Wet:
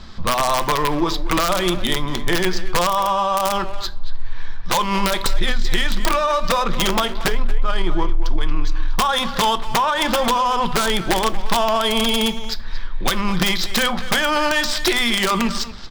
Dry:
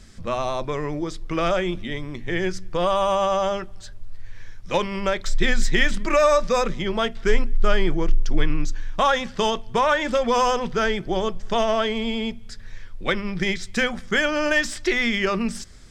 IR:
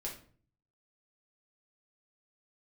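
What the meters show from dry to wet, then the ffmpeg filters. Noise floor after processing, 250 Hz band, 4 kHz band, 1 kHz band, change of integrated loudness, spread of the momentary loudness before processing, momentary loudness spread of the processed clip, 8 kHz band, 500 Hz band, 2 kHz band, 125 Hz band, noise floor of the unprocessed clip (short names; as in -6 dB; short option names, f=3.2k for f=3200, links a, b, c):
-26 dBFS, +3.0 dB, +8.5 dB, +5.5 dB, +3.5 dB, 9 LU, 8 LU, +9.0 dB, -1.0 dB, +2.0 dB, +3.5 dB, -40 dBFS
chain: -filter_complex "[0:a]equalizer=f=125:t=o:w=1:g=-4,equalizer=f=500:t=o:w=1:g=-4,equalizer=f=1k:t=o:w=1:g=11,equalizer=f=2k:t=o:w=1:g=-5,equalizer=f=4k:t=o:w=1:g=12,alimiter=limit=-12dB:level=0:latency=1:release=100,acompressor=threshold=-23dB:ratio=8,asoftclip=type=tanh:threshold=-18.5dB,adynamicsmooth=sensitivity=5.5:basefreq=2.8k,aeval=exprs='(mod(11.2*val(0)+1,2)-1)/11.2':c=same,asplit=2[a][b];[b]adelay=230,highpass=300,lowpass=3.4k,asoftclip=type=hard:threshold=-31dB,volume=-9dB[c];[a][c]amix=inputs=2:normalize=0,asplit=2[d][e];[1:a]atrim=start_sample=2205[f];[e][f]afir=irnorm=-1:irlink=0,volume=-10dB[g];[d][g]amix=inputs=2:normalize=0,volume=8dB"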